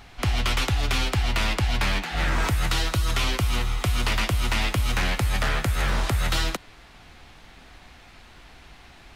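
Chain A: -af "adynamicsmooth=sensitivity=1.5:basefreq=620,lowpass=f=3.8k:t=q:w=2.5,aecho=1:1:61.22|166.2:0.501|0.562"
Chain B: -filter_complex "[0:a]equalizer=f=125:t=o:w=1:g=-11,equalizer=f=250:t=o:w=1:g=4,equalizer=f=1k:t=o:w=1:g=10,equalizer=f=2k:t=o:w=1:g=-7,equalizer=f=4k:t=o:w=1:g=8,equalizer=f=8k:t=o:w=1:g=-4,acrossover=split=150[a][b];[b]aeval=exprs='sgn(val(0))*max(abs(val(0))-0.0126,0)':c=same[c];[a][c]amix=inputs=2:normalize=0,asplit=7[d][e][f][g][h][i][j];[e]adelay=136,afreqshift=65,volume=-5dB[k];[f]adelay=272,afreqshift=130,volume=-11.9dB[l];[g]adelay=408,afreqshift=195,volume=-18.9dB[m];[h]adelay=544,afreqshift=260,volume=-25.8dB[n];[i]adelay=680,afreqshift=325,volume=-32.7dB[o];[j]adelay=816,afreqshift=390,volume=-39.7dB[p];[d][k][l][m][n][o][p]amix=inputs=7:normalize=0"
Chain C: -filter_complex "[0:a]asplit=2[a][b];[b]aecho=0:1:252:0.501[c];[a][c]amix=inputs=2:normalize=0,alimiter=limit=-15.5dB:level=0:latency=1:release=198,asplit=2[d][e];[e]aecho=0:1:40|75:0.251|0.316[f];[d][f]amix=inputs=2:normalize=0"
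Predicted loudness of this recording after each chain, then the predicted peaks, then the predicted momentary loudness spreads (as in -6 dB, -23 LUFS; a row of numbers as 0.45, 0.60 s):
-25.0, -23.0, -26.0 LUFS; -9.0, -7.0, -12.5 dBFS; 2, 3, 1 LU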